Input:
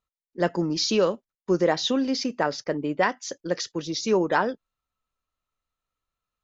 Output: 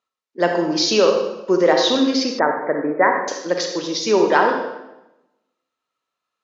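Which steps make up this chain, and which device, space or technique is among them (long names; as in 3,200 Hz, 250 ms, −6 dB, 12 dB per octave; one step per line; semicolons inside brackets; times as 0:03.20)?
supermarket ceiling speaker (band-pass filter 300–6,400 Hz; convolution reverb RT60 0.95 s, pre-delay 38 ms, DRR 3 dB)
0:02.39–0:03.28: Butterworth low-pass 2,200 Hz 96 dB per octave
level +6.5 dB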